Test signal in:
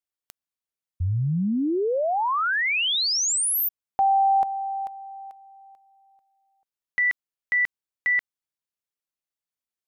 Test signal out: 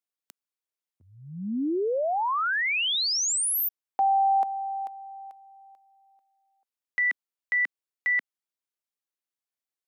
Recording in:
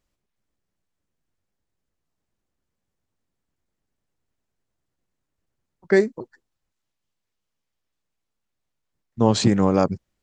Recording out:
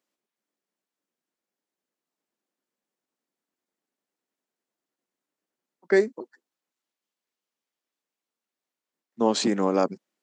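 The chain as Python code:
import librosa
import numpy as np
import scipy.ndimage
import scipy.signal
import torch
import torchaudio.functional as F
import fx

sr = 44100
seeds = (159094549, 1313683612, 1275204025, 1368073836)

y = scipy.signal.sosfilt(scipy.signal.butter(4, 230.0, 'highpass', fs=sr, output='sos'), x)
y = y * librosa.db_to_amplitude(-2.5)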